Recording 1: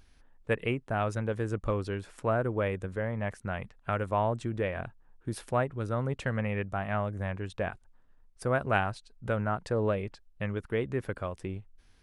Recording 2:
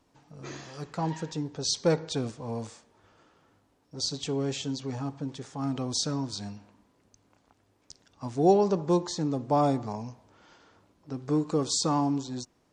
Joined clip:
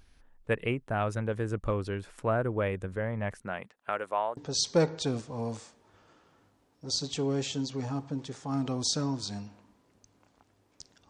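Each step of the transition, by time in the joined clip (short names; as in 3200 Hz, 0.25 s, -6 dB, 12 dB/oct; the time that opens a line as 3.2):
recording 1
3.42–4.37 HPF 170 Hz -> 730 Hz
4.37 switch to recording 2 from 1.47 s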